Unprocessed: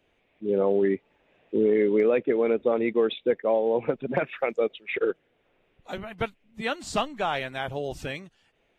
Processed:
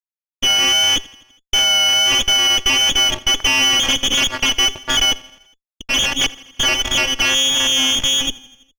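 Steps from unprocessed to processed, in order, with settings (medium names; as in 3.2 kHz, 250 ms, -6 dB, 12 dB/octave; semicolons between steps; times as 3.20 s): tracing distortion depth 0.15 ms; vocoder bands 8, square 132 Hz; in parallel at +2 dB: compression, threshold -35 dBFS, peak gain reduction 15.5 dB; on the sum: fuzz box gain 40 dB, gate -41 dBFS; peaking EQ 450 Hz +6 dB 0.28 oct; on a send: feedback delay 82 ms, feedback 60%, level -20 dB; on the sum: frequency inversion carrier 3.4 kHz; vibrato 1.5 Hz 18 cents; sliding maximum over 5 samples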